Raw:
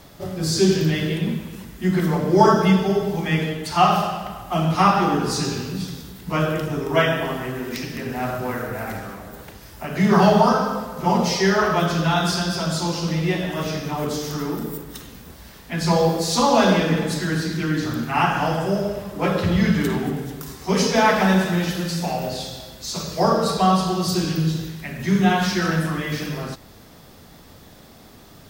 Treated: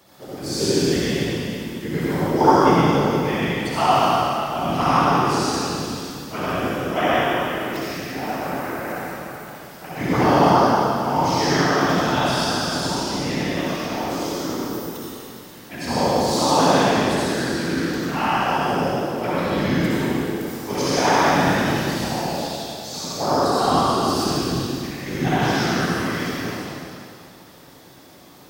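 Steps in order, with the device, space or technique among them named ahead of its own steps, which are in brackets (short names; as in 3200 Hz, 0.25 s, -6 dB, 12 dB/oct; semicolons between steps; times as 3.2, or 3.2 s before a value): whispering ghost (whisperiser; HPF 200 Hz 6 dB/oct; reverb RT60 2.5 s, pre-delay 57 ms, DRR -7.5 dB); gain -7 dB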